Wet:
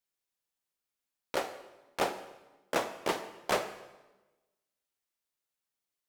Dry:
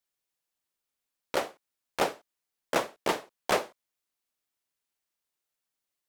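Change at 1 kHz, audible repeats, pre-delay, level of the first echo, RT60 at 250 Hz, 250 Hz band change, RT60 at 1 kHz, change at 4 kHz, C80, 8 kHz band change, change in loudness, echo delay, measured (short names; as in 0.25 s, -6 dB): -3.0 dB, none, 10 ms, none, 1.3 s, -3.0 dB, 1.1 s, -3.0 dB, 12.5 dB, -3.0 dB, -3.5 dB, none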